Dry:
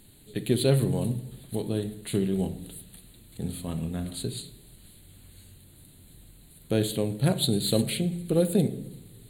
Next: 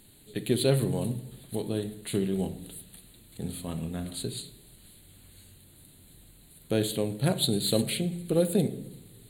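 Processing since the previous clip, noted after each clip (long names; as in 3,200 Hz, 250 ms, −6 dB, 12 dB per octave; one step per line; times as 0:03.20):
low-shelf EQ 210 Hz −4.5 dB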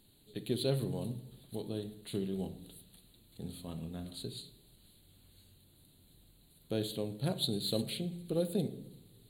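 graphic EQ with 10 bands 2,000 Hz −6 dB, 4,000 Hz +5 dB, 8,000 Hz −7 dB
level −8 dB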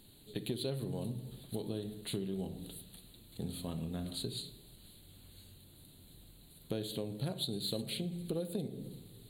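downward compressor 5 to 1, threshold −40 dBFS, peak gain reduction 12.5 dB
level +5.5 dB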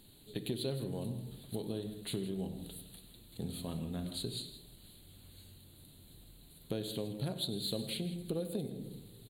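multi-tap delay 96/163 ms −17.5/−14.5 dB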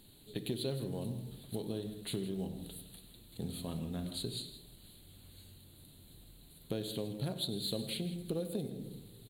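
noise that follows the level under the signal 34 dB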